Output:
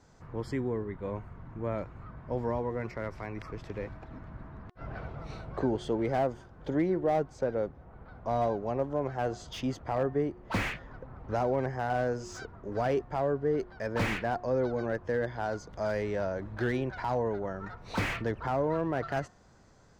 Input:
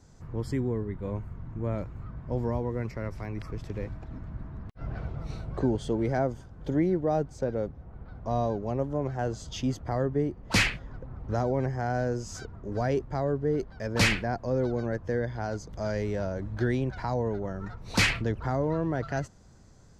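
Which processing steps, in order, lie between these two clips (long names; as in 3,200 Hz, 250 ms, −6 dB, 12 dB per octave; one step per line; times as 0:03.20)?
mid-hump overdrive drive 11 dB, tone 2,200 Hz, clips at −11 dBFS
hum removal 360.2 Hz, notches 5
slew-rate limiting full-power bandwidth 61 Hz
level −2 dB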